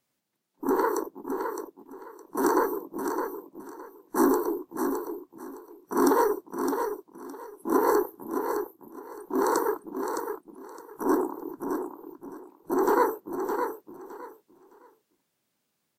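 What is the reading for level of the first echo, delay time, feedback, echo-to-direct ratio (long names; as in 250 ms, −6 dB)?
−6.5 dB, 613 ms, 22%, −6.5 dB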